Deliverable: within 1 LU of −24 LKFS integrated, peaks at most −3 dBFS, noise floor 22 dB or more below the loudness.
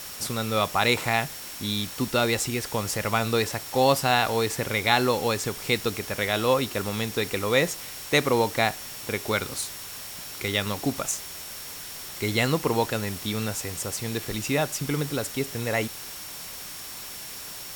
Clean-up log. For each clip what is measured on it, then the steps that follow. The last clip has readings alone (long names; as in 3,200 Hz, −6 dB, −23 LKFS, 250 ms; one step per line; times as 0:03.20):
interfering tone 5,500 Hz; level of the tone −46 dBFS; background noise floor −39 dBFS; target noise floor −49 dBFS; integrated loudness −26.5 LKFS; sample peak −4.0 dBFS; target loudness −24.0 LKFS
→ notch filter 5,500 Hz, Q 30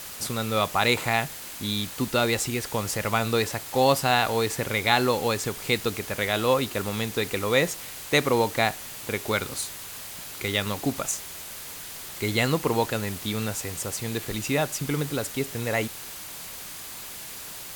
interfering tone none found; background noise floor −39 dBFS; target noise floor −49 dBFS
→ broadband denoise 10 dB, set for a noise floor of −39 dBFS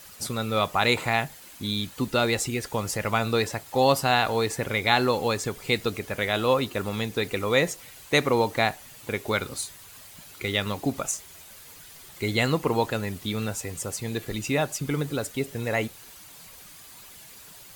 background noise floor −47 dBFS; target noise floor −49 dBFS
→ broadband denoise 6 dB, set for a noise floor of −47 dBFS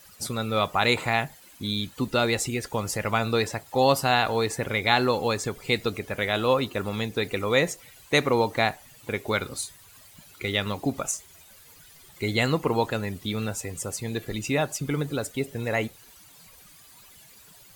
background noise floor −52 dBFS; integrated loudness −26.5 LKFS; sample peak −4.5 dBFS; target loudness −24.0 LKFS
→ level +2.5 dB
brickwall limiter −3 dBFS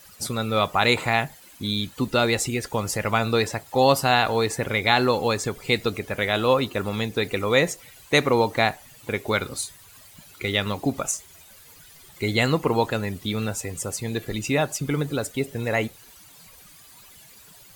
integrated loudness −24.0 LKFS; sample peak −3.0 dBFS; background noise floor −50 dBFS